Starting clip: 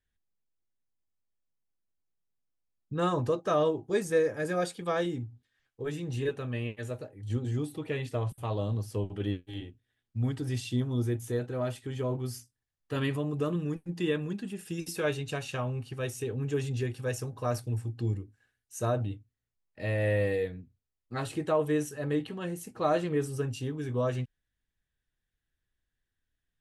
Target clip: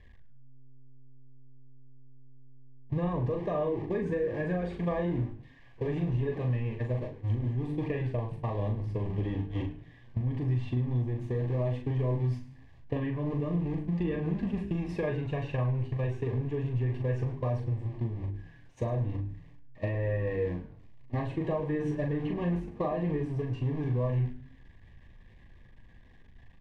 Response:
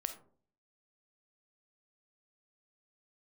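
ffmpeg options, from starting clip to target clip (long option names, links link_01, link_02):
-filter_complex "[0:a]aeval=exprs='val(0)+0.5*0.0188*sgn(val(0))':channel_layout=same,agate=range=-23dB:threshold=-34dB:ratio=16:detection=peak,lowpass=5900,bass=frequency=250:gain=6,treble=frequency=4000:gain=-12,bandreject=frequency=50:width_type=h:width=6,bandreject=frequency=100:width_type=h:width=6,bandreject=frequency=150:width_type=h:width=6,bandreject=frequency=200:width_type=h:width=6,bandreject=frequency=250:width_type=h:width=6,bandreject=frequency=300:width_type=h:width=6,bandreject=frequency=350:width_type=h:width=6,bandreject=frequency=400:width_type=h:width=6,bandreject=frequency=450:width_type=h:width=6,acrossover=split=2400[link_01][link_02];[link_01]acontrast=89[link_03];[link_02]alimiter=level_in=19dB:limit=-24dB:level=0:latency=1:release=349,volume=-19dB[link_04];[link_03][link_04]amix=inputs=2:normalize=0,acompressor=threshold=-29dB:ratio=10,asuperstop=centerf=1400:order=12:qfactor=3.3,asplit=2[link_05][link_06];[link_06]adelay=40,volume=-5dB[link_07];[link_05][link_07]amix=inputs=2:normalize=0,asplit=2[link_08][link_09];[link_09]asplit=3[link_10][link_11][link_12];[link_10]adelay=104,afreqshift=-130,volume=-14.5dB[link_13];[link_11]adelay=208,afreqshift=-260,volume=-24.7dB[link_14];[link_12]adelay=312,afreqshift=-390,volume=-34.8dB[link_15];[link_13][link_14][link_15]amix=inputs=3:normalize=0[link_16];[link_08][link_16]amix=inputs=2:normalize=0"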